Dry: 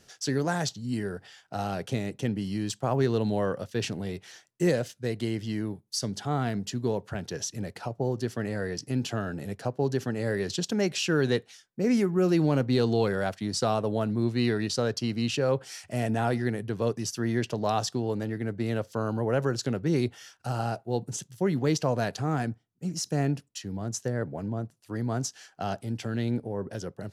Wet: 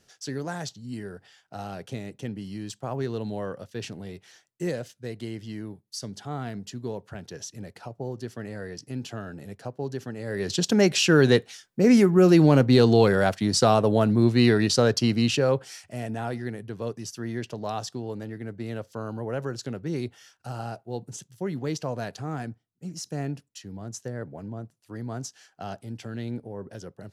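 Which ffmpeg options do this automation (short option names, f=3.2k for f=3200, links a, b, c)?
-af "volume=7dB,afade=t=in:st=10.27:d=0.45:silence=0.251189,afade=t=out:st=15.08:d=0.82:silence=0.266073"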